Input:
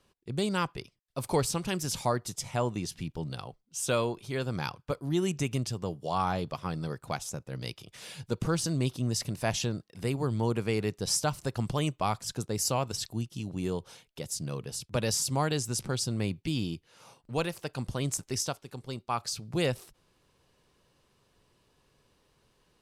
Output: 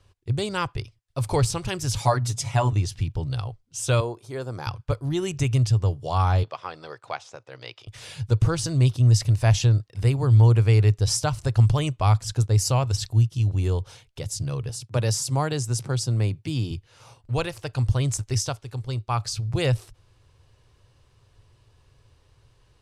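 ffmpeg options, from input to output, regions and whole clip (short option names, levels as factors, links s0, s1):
-filter_complex "[0:a]asettb=1/sr,asplit=3[s0][s1][s2];[s0]atrim=end=1.984[s3];[s1]atrim=start=1.98:end=2.73,asetpts=PTS-STARTPTS,afade=t=in:d=0.004:c=qsin,afade=t=out:st=0.746:d=0.004:c=qsin,highpass=130,bandreject=f=60:t=h:w=6,bandreject=f=120:t=h:w=6,bandreject=f=180:t=h:w=6,bandreject=f=240:t=h:w=6,aecho=1:1:7.2:0.99,atrim=end_sample=33075[s4];[s2]atrim=start=2.726[s5];[s3][s4]acrossfade=d=0.004:c1=hsin:c2=qsin[s6];[s6][s5]acrossfade=d=0.004:c1=qsin:c2=hsin,asettb=1/sr,asplit=3[s7][s8][s9];[s7]atrim=end=4.004[s10];[s8]atrim=start=4:end=4.67,asetpts=PTS-STARTPTS,afade=t=in:d=0.004:c=qsin,afade=t=out:st=0.666:d=0.004:c=qsin,highpass=260,equalizer=f=2800:t=o:w=1.6:g=-12[s11];[s9]atrim=start=4.666[s12];[s10][s11]acrossfade=d=0.004:c1=hsin:c2=qsin[s13];[s13][s12]acrossfade=d=0.004:c1=qsin:c2=hsin,asettb=1/sr,asplit=3[s14][s15][s16];[s14]atrim=end=6.434[s17];[s15]atrim=start=6.43:end=7.87,asetpts=PTS-STARTPTS,afade=t=in:d=0.004:c=qsin,afade=t=out:st=1.436:d=0.004:c=qsin,highpass=470,lowpass=5600,acrossover=split=4000[s18][s19];[s19]acompressor=threshold=0.002:ratio=4:attack=1:release=60[s20];[s18][s20]amix=inputs=2:normalize=0[s21];[s16]atrim=start=7.866[s22];[s17][s21]acrossfade=d=0.004:c1=hsin:c2=qsin[s23];[s23][s22]acrossfade=d=0.004:c1=qsin:c2=hsin,asettb=1/sr,asplit=3[s24][s25][s26];[s24]atrim=end=14.694[s27];[s25]atrim=start=14.69:end=16.71,asetpts=PTS-STARTPTS,afade=t=in:d=0.004:c=qsin,afade=t=out:st=2.016:d=0.004:c=qsin,highpass=f=130:w=0.5412,highpass=f=130:w=1.3066,equalizer=f=3100:w=0.78:g=-4[s28];[s26]atrim=start=16.706[s29];[s27][s28]acrossfade=d=0.004:c1=hsin:c2=qsin[s30];[s30][s29]acrossfade=d=0.004:c1=qsin:c2=hsin,lowpass=10000,lowshelf=f=140:t=q:w=3:g=9,volume=1.58"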